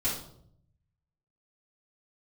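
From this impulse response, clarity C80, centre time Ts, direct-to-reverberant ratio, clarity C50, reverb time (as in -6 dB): 8.5 dB, 38 ms, -10.0 dB, 3.5 dB, 0.65 s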